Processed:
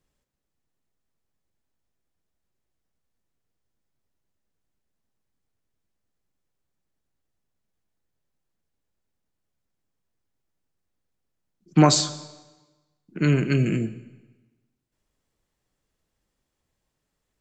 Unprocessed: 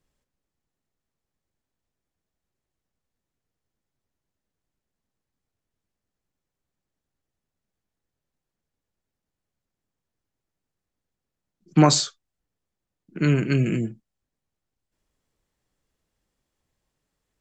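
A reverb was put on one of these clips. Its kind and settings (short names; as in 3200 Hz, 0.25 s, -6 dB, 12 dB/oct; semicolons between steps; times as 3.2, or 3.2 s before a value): digital reverb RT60 1.2 s, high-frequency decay 0.95×, pre-delay 20 ms, DRR 14.5 dB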